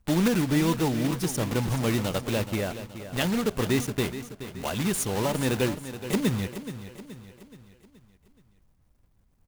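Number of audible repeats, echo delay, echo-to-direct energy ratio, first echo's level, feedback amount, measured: 4, 425 ms, -11.0 dB, -12.0 dB, 48%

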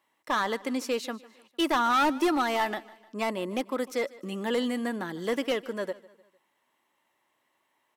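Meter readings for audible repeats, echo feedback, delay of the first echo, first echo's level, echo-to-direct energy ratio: 3, 46%, 151 ms, -20.5 dB, -19.5 dB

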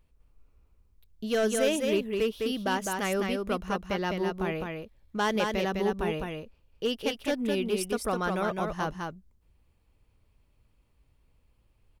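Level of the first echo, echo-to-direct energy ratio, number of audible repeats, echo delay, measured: -4.0 dB, -4.0 dB, 1, 206 ms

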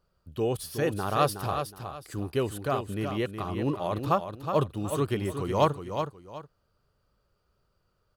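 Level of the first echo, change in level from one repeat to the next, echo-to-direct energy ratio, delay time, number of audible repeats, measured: -7.5 dB, -11.0 dB, -7.0 dB, 368 ms, 2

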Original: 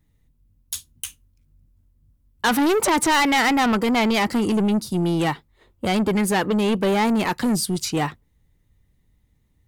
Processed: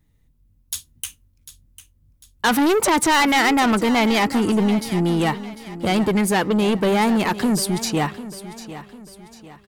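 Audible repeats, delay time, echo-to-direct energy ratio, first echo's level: 3, 748 ms, -13.5 dB, -14.5 dB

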